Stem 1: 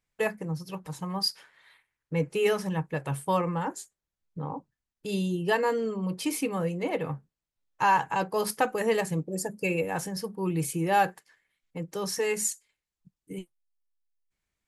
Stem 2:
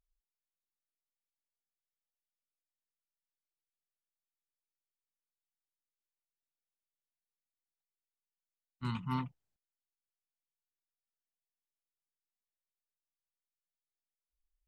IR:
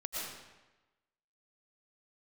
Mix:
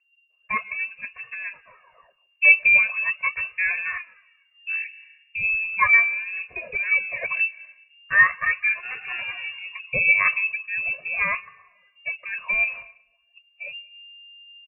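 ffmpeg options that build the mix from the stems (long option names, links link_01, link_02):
-filter_complex "[0:a]aecho=1:1:1.8:0.85,adynamicequalizer=threshold=0.0112:dfrequency=230:dqfactor=1.2:tfrequency=230:tqfactor=1.2:attack=5:release=100:ratio=0.375:range=1.5:mode=boostabove:tftype=bell,acrusher=bits=6:mode=log:mix=0:aa=0.000001,adelay=300,volume=-1.5dB,asplit=2[link_01][link_02];[link_02]volume=-23.5dB[link_03];[1:a]volume=-2.5dB,asplit=3[link_04][link_05][link_06];[link_05]volume=-3dB[link_07];[link_06]apad=whole_len=660260[link_08];[link_01][link_08]sidechaincompress=threshold=-47dB:ratio=5:attack=5.9:release=702[link_09];[2:a]atrim=start_sample=2205[link_10];[link_03][link_07]amix=inputs=2:normalize=0[link_11];[link_11][link_10]afir=irnorm=-1:irlink=0[link_12];[link_09][link_04][link_12]amix=inputs=3:normalize=0,aphaser=in_gain=1:out_gain=1:delay=3:decay=0.68:speed=0.39:type=sinusoidal,lowshelf=frequency=88:gain=8.5,lowpass=frequency=2400:width_type=q:width=0.5098,lowpass=frequency=2400:width_type=q:width=0.6013,lowpass=frequency=2400:width_type=q:width=0.9,lowpass=frequency=2400:width_type=q:width=2.563,afreqshift=-2800"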